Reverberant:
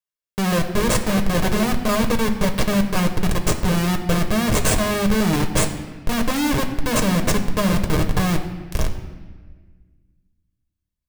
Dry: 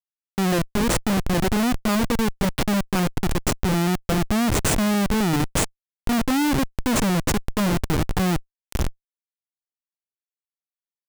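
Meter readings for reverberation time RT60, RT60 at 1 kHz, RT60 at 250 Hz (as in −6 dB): 1.4 s, 1.3 s, 2.0 s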